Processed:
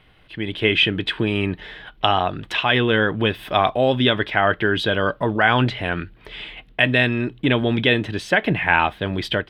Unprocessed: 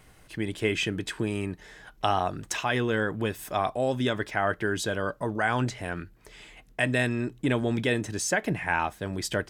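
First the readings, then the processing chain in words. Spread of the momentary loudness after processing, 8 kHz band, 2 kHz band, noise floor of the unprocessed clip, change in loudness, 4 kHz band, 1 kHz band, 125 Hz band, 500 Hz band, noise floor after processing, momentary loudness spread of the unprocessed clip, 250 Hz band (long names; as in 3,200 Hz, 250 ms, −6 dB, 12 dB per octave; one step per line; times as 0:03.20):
12 LU, below −10 dB, +10.0 dB, −56 dBFS, +8.5 dB, +13.5 dB, +8.0 dB, +7.5 dB, +7.5 dB, −52 dBFS, 9 LU, +7.0 dB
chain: high shelf with overshoot 4,800 Hz −13.5 dB, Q 3
automatic gain control gain up to 11 dB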